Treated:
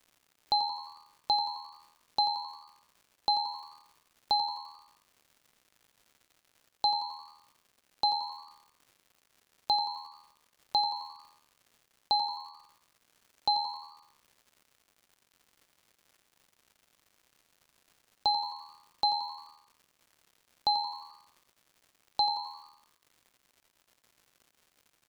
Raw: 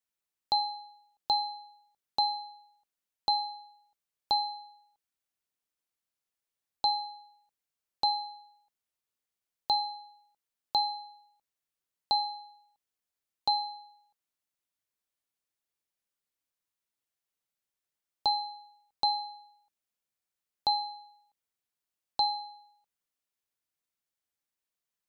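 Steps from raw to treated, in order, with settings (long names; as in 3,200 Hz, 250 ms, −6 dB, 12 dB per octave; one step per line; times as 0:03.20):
surface crackle 210 per second −50 dBFS
echo with shifted repeats 87 ms, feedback 48%, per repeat +78 Hz, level −11 dB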